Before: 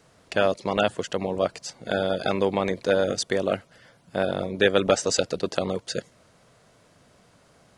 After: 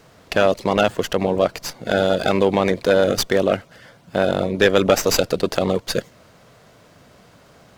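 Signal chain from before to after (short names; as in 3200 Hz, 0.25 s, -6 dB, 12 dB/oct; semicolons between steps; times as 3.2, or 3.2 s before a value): in parallel at +2 dB: limiter -15.5 dBFS, peak gain reduction 10 dB; on the sum: running maximum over 3 samples; gain +1 dB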